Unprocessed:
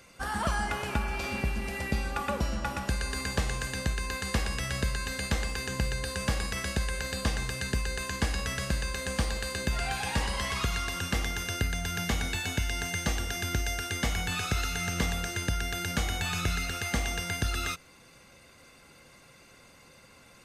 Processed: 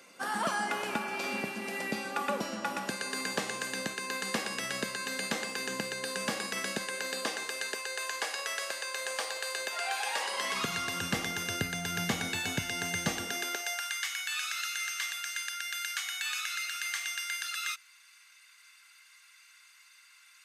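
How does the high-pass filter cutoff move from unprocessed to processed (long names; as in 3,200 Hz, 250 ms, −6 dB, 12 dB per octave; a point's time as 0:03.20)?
high-pass filter 24 dB per octave
0:06.78 210 Hz
0:07.99 490 Hz
0:10.22 490 Hz
0:10.80 120 Hz
0:13.21 120 Hz
0:13.44 320 Hz
0:14.04 1,400 Hz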